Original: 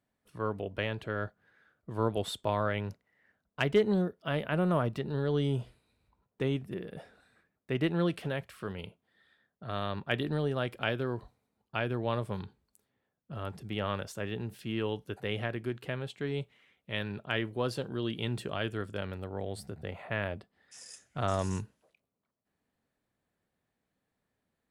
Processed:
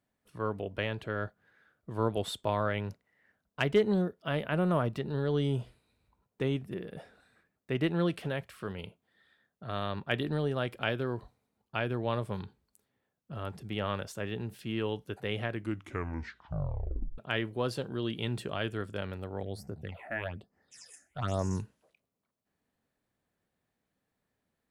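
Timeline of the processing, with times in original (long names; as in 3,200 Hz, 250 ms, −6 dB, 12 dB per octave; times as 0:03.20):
0:15.50: tape stop 1.68 s
0:19.43–0:21.60: all-pass phaser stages 8, 1.1 Hz, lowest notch 130–3,600 Hz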